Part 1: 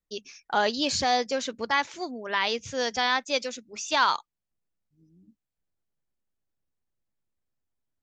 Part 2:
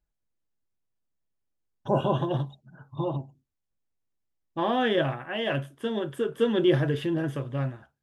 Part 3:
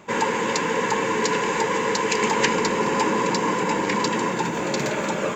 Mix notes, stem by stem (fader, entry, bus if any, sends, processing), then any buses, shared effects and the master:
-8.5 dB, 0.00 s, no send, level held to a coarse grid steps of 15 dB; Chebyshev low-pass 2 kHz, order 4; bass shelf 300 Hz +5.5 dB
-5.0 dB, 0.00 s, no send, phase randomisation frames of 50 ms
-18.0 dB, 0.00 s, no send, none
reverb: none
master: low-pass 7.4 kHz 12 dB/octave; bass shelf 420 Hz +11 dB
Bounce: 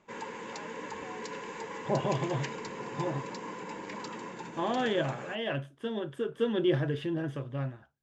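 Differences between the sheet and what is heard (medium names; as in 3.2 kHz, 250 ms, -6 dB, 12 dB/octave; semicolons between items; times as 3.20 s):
stem 1 -8.5 dB -> -19.0 dB; stem 2: missing phase randomisation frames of 50 ms; master: missing bass shelf 420 Hz +11 dB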